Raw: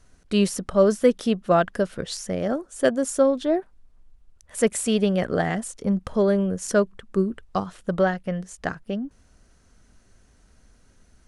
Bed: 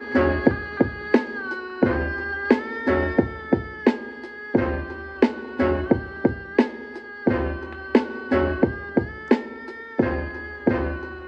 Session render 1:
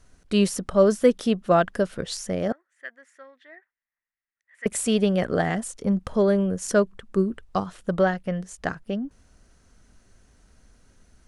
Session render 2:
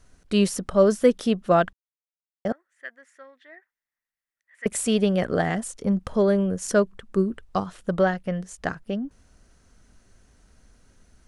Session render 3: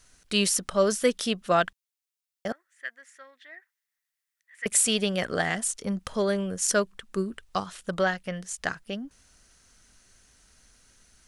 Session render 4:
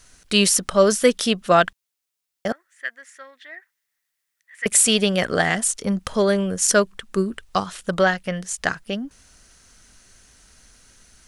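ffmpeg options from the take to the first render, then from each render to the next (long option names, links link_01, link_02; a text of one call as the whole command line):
ffmpeg -i in.wav -filter_complex "[0:a]asettb=1/sr,asplit=3[link_01][link_02][link_03];[link_01]atrim=end=2.524[link_04];[link_02]atrim=start=2.52:end=4.66,asetpts=PTS-STARTPTS,afade=type=in:duration=0.004:curve=qsin,afade=type=out:start_time=2.136:duration=0.004:curve=qsin,bandpass=frequency=1900:width_type=q:width=9.3[link_05];[link_03]atrim=start=4.656[link_06];[link_04][link_05]acrossfade=duration=0.004:curve1=hsin:curve2=qsin[link_07];[link_07][link_06]acrossfade=duration=0.004:curve1=qsin:curve2=hsin" out.wav
ffmpeg -i in.wav -filter_complex "[0:a]asplit=3[link_01][link_02][link_03];[link_01]atrim=end=1.73,asetpts=PTS-STARTPTS,afade=type=out:start_time=1.726:duration=0.004:curve=hsin[link_04];[link_02]atrim=start=1.73:end=2.45,asetpts=PTS-STARTPTS,volume=0[link_05];[link_03]atrim=start=2.45,asetpts=PTS-STARTPTS,afade=type=in:duration=0.004:curve=hsin[link_06];[link_04][link_05][link_06]concat=n=3:v=0:a=1" out.wav
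ffmpeg -i in.wav -af "tiltshelf=frequency=1300:gain=-7.5" out.wav
ffmpeg -i in.wav -af "volume=7dB,alimiter=limit=-3dB:level=0:latency=1" out.wav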